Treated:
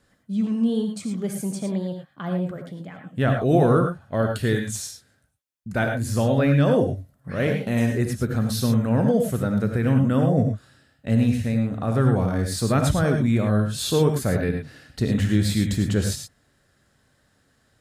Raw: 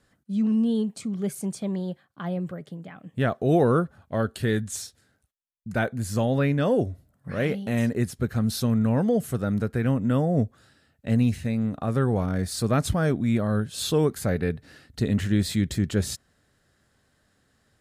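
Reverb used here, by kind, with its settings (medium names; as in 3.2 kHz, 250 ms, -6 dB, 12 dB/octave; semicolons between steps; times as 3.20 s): gated-style reverb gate 130 ms rising, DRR 4 dB; trim +1.5 dB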